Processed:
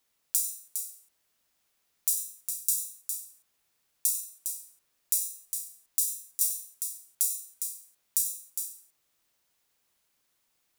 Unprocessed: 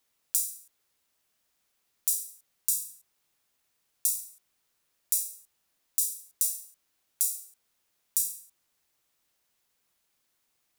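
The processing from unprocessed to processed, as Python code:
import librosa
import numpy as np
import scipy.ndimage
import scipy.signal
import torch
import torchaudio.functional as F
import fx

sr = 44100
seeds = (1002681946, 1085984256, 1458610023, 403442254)

y = fx.echo_multitap(x, sr, ms=(96, 408), db=(-13.0, -7.0))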